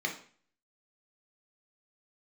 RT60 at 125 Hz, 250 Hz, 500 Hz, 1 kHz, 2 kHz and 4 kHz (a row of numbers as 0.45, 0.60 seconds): 0.50, 0.50, 0.45, 0.45, 0.45, 0.45 seconds